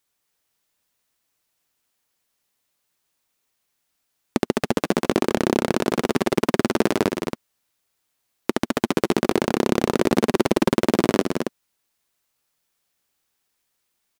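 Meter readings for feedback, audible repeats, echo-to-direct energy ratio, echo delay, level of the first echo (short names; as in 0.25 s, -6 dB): no steady repeat, 2, -4.0 dB, 0.213 s, -7.5 dB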